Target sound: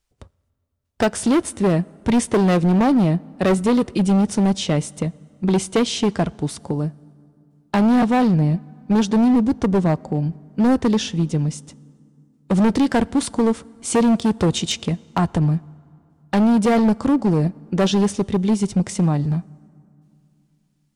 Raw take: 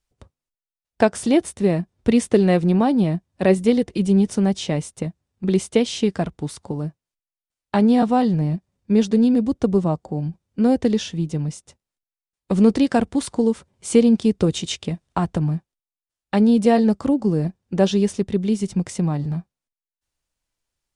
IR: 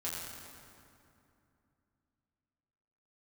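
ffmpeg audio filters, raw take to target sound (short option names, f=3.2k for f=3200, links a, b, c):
-filter_complex "[0:a]volume=16.5dB,asoftclip=hard,volume=-16.5dB,asplit=2[a][b];[1:a]atrim=start_sample=2205[c];[b][c]afir=irnorm=-1:irlink=0,volume=-25dB[d];[a][d]amix=inputs=2:normalize=0,volume=3.5dB"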